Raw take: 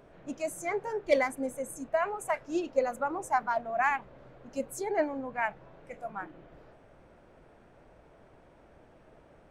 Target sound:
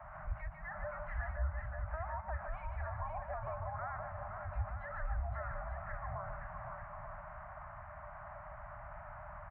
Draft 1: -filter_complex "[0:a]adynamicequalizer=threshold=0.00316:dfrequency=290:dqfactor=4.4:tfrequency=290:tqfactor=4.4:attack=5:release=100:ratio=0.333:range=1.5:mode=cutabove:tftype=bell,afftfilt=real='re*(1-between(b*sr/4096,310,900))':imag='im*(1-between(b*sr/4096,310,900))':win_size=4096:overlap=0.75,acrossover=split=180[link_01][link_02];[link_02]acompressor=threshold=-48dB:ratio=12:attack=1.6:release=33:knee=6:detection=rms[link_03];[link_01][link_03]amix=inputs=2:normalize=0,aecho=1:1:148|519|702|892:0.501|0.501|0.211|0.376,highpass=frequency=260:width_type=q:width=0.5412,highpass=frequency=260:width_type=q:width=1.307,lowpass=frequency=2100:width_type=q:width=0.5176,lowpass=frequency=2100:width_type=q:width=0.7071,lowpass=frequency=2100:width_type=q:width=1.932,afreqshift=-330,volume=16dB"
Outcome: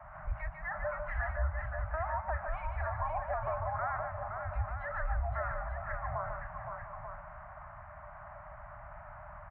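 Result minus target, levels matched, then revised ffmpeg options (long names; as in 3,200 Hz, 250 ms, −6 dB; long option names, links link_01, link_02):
downward compressor: peak gain reduction −7.5 dB
-filter_complex "[0:a]adynamicequalizer=threshold=0.00316:dfrequency=290:dqfactor=4.4:tfrequency=290:tqfactor=4.4:attack=5:release=100:ratio=0.333:range=1.5:mode=cutabove:tftype=bell,afftfilt=real='re*(1-between(b*sr/4096,310,900))':imag='im*(1-between(b*sr/4096,310,900))':win_size=4096:overlap=0.75,acrossover=split=180[link_01][link_02];[link_02]acompressor=threshold=-56dB:ratio=12:attack=1.6:release=33:knee=6:detection=rms[link_03];[link_01][link_03]amix=inputs=2:normalize=0,aecho=1:1:148|519|702|892:0.501|0.501|0.211|0.376,highpass=frequency=260:width_type=q:width=0.5412,highpass=frequency=260:width_type=q:width=1.307,lowpass=frequency=2100:width_type=q:width=0.5176,lowpass=frequency=2100:width_type=q:width=0.7071,lowpass=frequency=2100:width_type=q:width=1.932,afreqshift=-330,volume=16dB"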